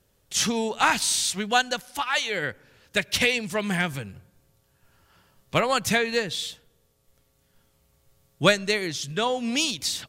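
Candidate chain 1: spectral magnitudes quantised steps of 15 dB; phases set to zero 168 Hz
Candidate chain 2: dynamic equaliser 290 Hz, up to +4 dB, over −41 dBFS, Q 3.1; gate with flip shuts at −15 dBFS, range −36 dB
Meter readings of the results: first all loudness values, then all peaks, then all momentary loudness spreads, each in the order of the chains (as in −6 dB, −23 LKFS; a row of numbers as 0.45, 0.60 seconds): −27.5, −34.0 LKFS; −2.5, −11.0 dBFS; 8, 13 LU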